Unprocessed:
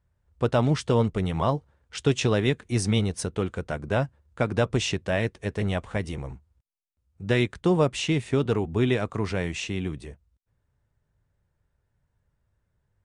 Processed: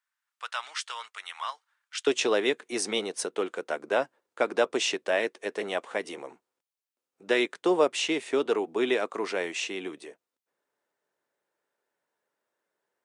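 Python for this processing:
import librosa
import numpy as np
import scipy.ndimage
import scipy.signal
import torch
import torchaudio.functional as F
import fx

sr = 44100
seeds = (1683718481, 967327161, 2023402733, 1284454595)

y = fx.highpass(x, sr, hz=fx.steps((0.0, 1200.0), (2.07, 330.0)), slope=24)
y = y * 10.0 ** (1.0 / 20.0)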